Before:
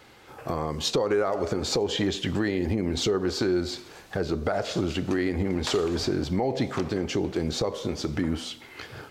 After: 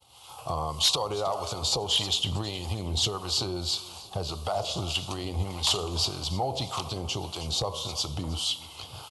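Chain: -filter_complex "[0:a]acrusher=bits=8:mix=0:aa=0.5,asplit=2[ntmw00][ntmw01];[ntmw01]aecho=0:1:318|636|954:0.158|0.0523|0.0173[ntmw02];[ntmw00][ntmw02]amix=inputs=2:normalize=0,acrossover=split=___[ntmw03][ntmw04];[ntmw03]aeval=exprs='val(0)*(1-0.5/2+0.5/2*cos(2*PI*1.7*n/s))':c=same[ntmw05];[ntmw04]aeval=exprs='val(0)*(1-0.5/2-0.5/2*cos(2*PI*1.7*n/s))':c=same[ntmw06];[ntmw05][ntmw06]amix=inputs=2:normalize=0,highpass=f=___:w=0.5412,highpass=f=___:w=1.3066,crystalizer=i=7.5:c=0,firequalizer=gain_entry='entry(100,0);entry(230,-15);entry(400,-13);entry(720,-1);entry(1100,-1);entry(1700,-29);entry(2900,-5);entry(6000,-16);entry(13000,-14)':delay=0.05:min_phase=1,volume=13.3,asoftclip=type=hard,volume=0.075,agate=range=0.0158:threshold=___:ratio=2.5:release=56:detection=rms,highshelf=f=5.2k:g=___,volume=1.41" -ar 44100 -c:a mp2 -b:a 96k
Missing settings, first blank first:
760, 45, 45, 0.00251, 4.5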